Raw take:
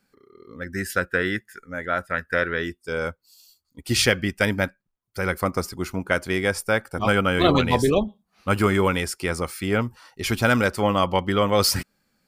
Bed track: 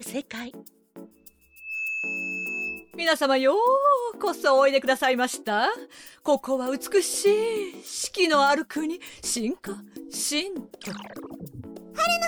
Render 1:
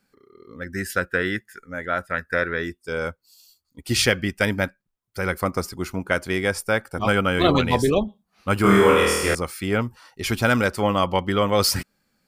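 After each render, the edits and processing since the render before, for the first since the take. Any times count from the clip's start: 2.19–2.75 s: band-stop 3 kHz, Q 5.1; 8.62–9.35 s: flutter echo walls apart 4.3 m, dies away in 1.2 s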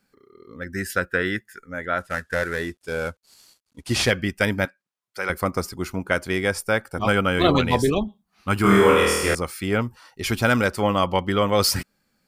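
2.00–4.11 s: CVSD coder 64 kbps; 4.65–5.30 s: frequency weighting A; 7.90–8.71 s: peaking EQ 530 Hz -8.5 dB 0.44 oct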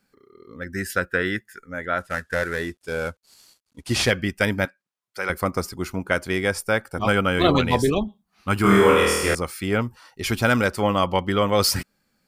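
no audible change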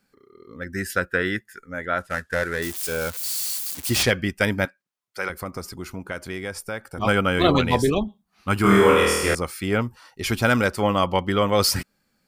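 2.62–4.03 s: zero-crossing glitches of -21 dBFS; 5.28–6.98 s: compression 2:1, threshold -33 dBFS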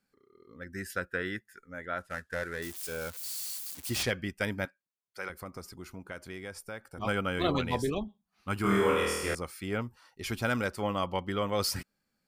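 trim -10.5 dB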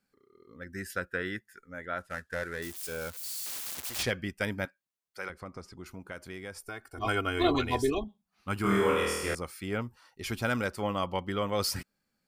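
3.46–3.99 s: spectrum-flattening compressor 4:1; 5.30–5.86 s: distance through air 75 m; 6.63–8.04 s: comb 2.8 ms, depth 79%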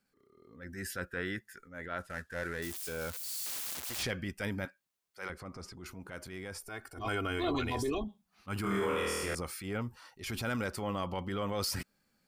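transient shaper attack -8 dB, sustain +5 dB; compression 2:1, threshold -33 dBFS, peak gain reduction 6.5 dB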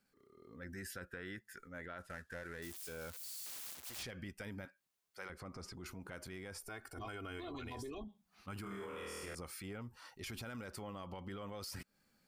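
peak limiter -27.5 dBFS, peak gain reduction 7 dB; compression 4:1, threshold -45 dBFS, peak gain reduction 11 dB

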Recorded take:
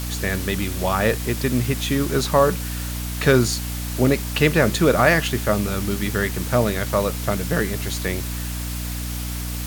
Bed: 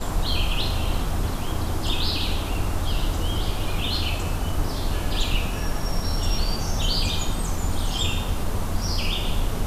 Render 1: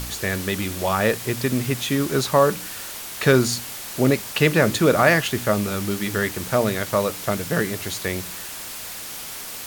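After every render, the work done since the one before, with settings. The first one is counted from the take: de-hum 60 Hz, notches 5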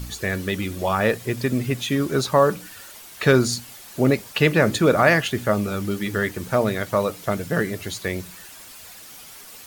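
noise reduction 10 dB, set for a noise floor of -34 dBFS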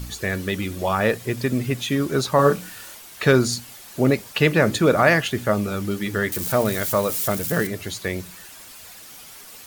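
2.36–2.95 s: doubling 28 ms -2 dB; 6.32–7.67 s: zero-crossing glitches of -21.5 dBFS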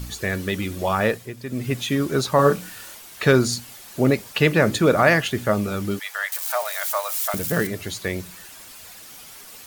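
1.04–1.73 s: dip -10.5 dB, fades 0.28 s; 5.99–7.34 s: steep high-pass 640 Hz 48 dB/octave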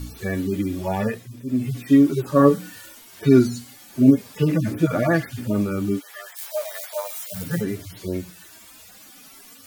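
harmonic-percussive separation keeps harmonic; peaking EQ 280 Hz +10.5 dB 0.5 oct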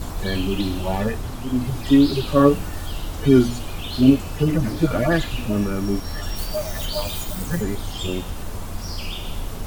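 add bed -5 dB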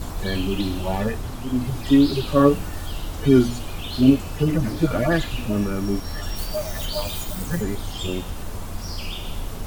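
trim -1 dB

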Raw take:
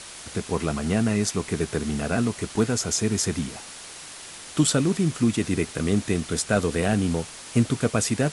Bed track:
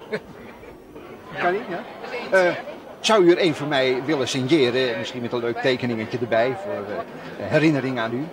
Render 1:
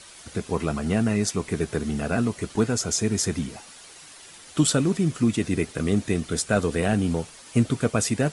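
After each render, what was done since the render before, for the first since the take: noise reduction 8 dB, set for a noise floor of -41 dBFS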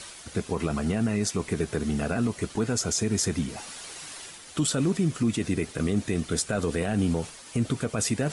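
peak limiter -16 dBFS, peak gain reduction 8 dB; reverse; upward compressor, threshold -33 dBFS; reverse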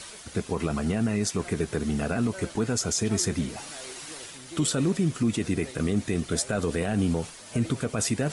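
add bed track -25.5 dB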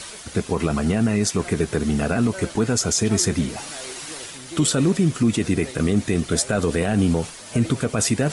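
trim +6 dB

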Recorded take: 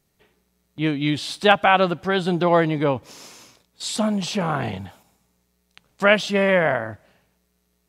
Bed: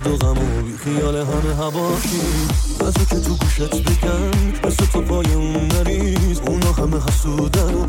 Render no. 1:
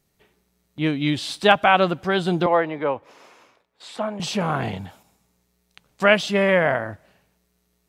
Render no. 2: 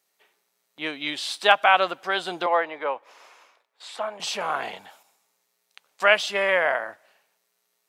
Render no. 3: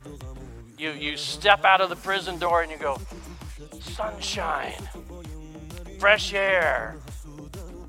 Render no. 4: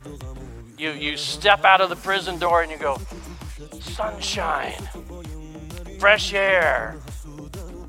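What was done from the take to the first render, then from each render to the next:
2.46–4.20 s: three-band isolator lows -14 dB, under 370 Hz, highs -18 dB, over 2.6 kHz
high-pass 650 Hz 12 dB/octave
add bed -22.5 dB
trim +3.5 dB; peak limiter -1 dBFS, peak gain reduction 2.5 dB

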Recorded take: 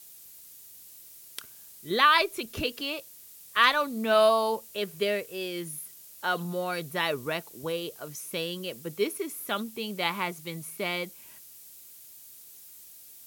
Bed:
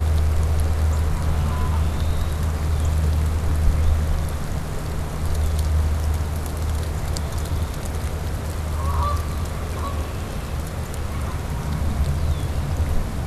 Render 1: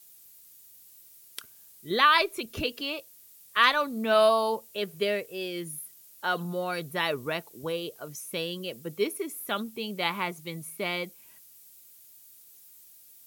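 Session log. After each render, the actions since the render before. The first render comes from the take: noise reduction 6 dB, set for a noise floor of -50 dBFS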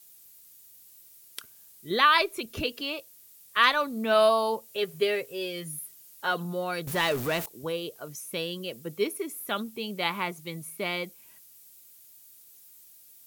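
4.67–6.31 s: comb 7.4 ms, depth 59%; 6.87–7.46 s: jump at every zero crossing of -30 dBFS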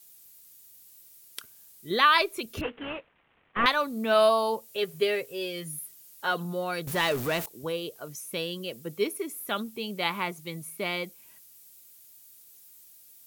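2.61–3.66 s: CVSD coder 16 kbps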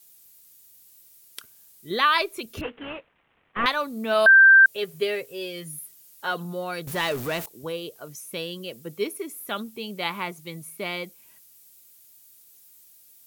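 4.26–4.66 s: bleep 1.57 kHz -9 dBFS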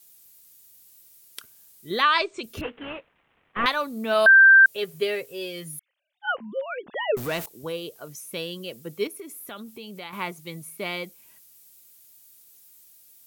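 2.02–2.44 s: brick-wall FIR low-pass 8.9 kHz; 5.79–7.17 s: formants replaced by sine waves; 9.07–10.13 s: compression 3:1, threshold -37 dBFS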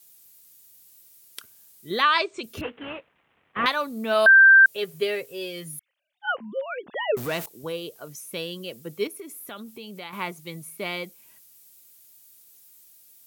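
high-pass 64 Hz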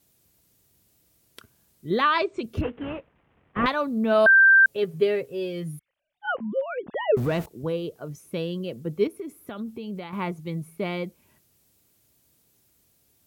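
tilt EQ -3.5 dB/octave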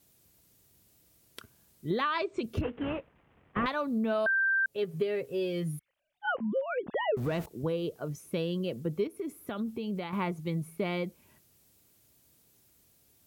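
compression 6:1, threshold -27 dBFS, peak gain reduction 12.5 dB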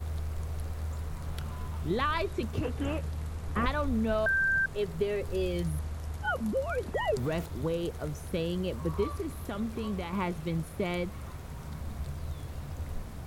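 add bed -15.5 dB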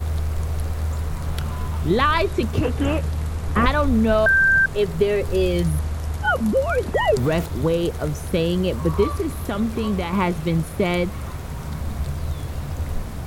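trim +11 dB

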